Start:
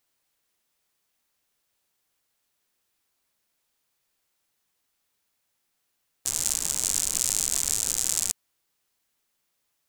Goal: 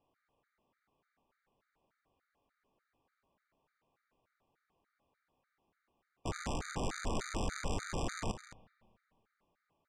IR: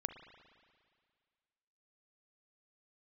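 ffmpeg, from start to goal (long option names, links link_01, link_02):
-filter_complex "[0:a]lowpass=1300,aecho=1:1:215:0.282,asplit=2[link_01][link_02];[1:a]atrim=start_sample=2205[link_03];[link_02][link_03]afir=irnorm=-1:irlink=0,volume=-9dB[link_04];[link_01][link_04]amix=inputs=2:normalize=0,afftfilt=real='re*gt(sin(2*PI*3.4*pts/sr)*(1-2*mod(floor(b*sr/1024/1200),2)),0)':imag='im*gt(sin(2*PI*3.4*pts/sr)*(1-2*mod(floor(b*sr/1024/1200),2)),0)':win_size=1024:overlap=0.75,volume=7dB"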